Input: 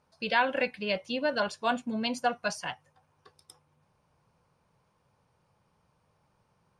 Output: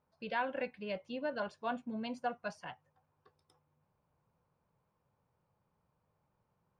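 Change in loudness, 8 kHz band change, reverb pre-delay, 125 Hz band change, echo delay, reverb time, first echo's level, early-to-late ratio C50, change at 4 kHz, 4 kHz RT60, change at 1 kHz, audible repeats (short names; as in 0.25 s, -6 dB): -9.5 dB, -20.0 dB, none, -7.5 dB, none, none, none, none, -15.0 dB, none, -9.0 dB, none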